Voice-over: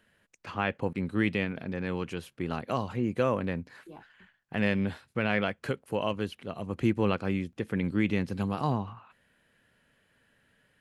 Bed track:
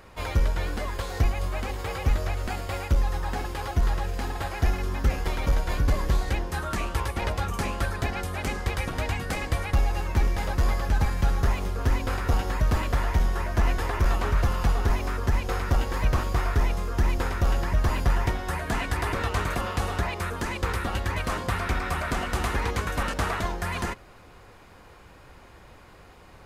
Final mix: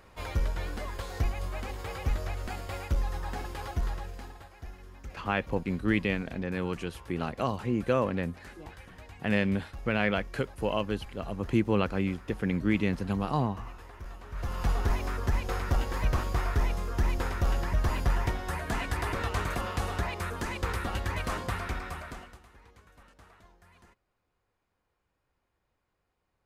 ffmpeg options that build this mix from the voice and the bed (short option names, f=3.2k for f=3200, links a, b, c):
-filter_complex "[0:a]adelay=4700,volume=0.5dB[a];[1:a]volume=10.5dB,afade=t=out:st=3.67:d=0.81:silence=0.188365,afade=t=in:st=14.29:d=0.43:silence=0.149624,afade=t=out:st=21.36:d=1.04:silence=0.0530884[b];[a][b]amix=inputs=2:normalize=0"